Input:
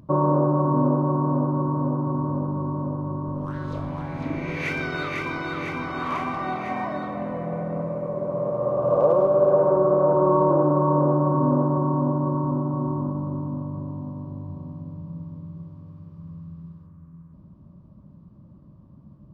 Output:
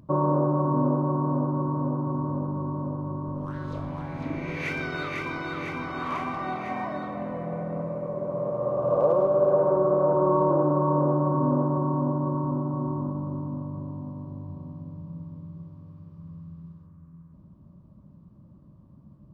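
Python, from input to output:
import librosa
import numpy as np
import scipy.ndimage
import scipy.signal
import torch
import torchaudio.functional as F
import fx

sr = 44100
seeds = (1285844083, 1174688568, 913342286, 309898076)

y = x * 10.0 ** (-3.0 / 20.0)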